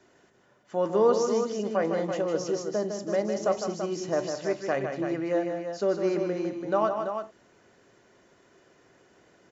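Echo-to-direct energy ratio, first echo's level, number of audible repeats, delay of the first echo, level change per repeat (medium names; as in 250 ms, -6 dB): -3.5 dB, -6.5 dB, 3, 155 ms, no regular repeats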